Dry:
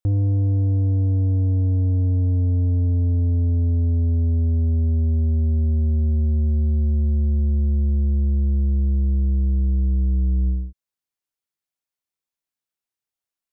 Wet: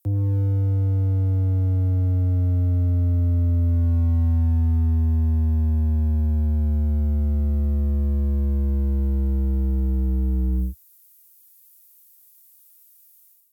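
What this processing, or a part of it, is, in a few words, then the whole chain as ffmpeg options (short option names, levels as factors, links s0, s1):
FM broadcast chain: -filter_complex "[0:a]highpass=f=71:w=0.5412,highpass=f=71:w=1.3066,dynaudnorm=f=390:g=3:m=5.31,acrossover=split=140|440[s0][s1][s2];[s0]acompressor=threshold=0.282:ratio=4[s3];[s1]acompressor=threshold=0.0708:ratio=4[s4];[s2]acompressor=threshold=0.0126:ratio=4[s5];[s3][s4][s5]amix=inputs=3:normalize=0,aemphasis=mode=production:type=50fm,alimiter=limit=0.237:level=0:latency=1:release=174,asoftclip=type=hard:threshold=0.2,lowpass=f=15000:w=0.5412,lowpass=f=15000:w=1.3066,aemphasis=mode=production:type=50fm,volume=0.75"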